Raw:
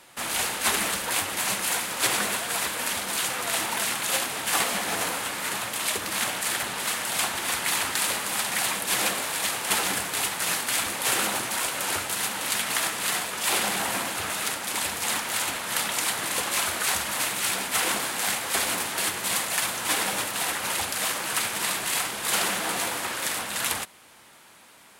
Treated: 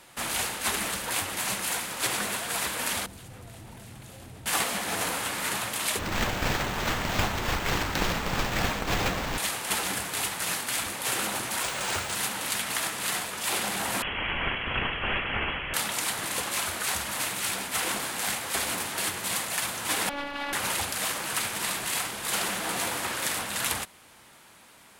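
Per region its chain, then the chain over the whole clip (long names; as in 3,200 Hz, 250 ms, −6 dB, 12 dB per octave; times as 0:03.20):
0:03.06–0:04.46: drawn EQ curve 110 Hz 0 dB, 180 Hz −11 dB, 710 Hz −21 dB, 1,100 Hz −27 dB + envelope flattener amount 100%
0:05.99–0:09.38: sample-rate reduction 10,000 Hz + spectral tilt −1.5 dB per octave
0:11.63–0:12.15: low-pass filter 8,800 Hz 24 dB per octave + notch filter 290 Hz, Q 5.3 + noise that follows the level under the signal 11 dB
0:14.02–0:15.74: Butterworth high-pass 230 Hz 48 dB per octave + voice inversion scrambler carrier 3,600 Hz
0:20.09–0:20.53: phases set to zero 285 Hz + high-frequency loss of the air 320 metres
whole clip: speech leveller 0.5 s; low-shelf EQ 130 Hz +8 dB; level −2.5 dB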